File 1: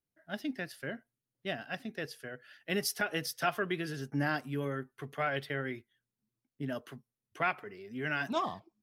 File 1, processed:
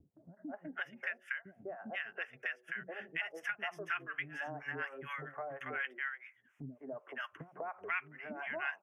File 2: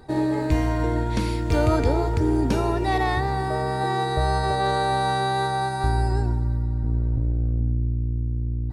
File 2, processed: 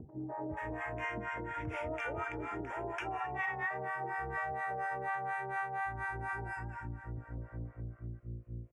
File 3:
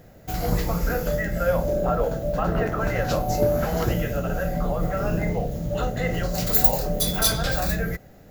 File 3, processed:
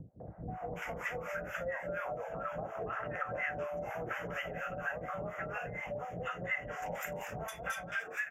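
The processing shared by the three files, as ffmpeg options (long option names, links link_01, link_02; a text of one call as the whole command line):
ffmpeg -i in.wav -filter_complex "[0:a]acrossover=split=290|980[link_01][link_02][link_03];[link_02]adelay=200[link_04];[link_03]adelay=480[link_05];[link_01][link_04][link_05]amix=inputs=3:normalize=0,aresample=32000,aresample=44100,highpass=83,acompressor=mode=upward:threshold=-37dB:ratio=2.5,bandreject=frequency=185:width_type=h:width=4,bandreject=frequency=370:width_type=h:width=4,bandreject=frequency=555:width_type=h:width=4,acrossover=split=710[link_06][link_07];[link_06]aeval=exprs='val(0)*(1-1/2+1/2*cos(2*PI*4.2*n/s))':channel_layout=same[link_08];[link_07]aeval=exprs='val(0)*(1-1/2-1/2*cos(2*PI*4.2*n/s))':channel_layout=same[link_09];[link_08][link_09]amix=inputs=2:normalize=0,acrossover=split=570 5100:gain=0.224 1 0.0708[link_10][link_11][link_12];[link_10][link_11][link_12]amix=inputs=3:normalize=0,acompressor=threshold=-53dB:ratio=3,asuperstop=centerf=4200:order=4:qfactor=1,equalizer=frequency=2300:width=0.82:gain=6,volume=10.5dB" out.wav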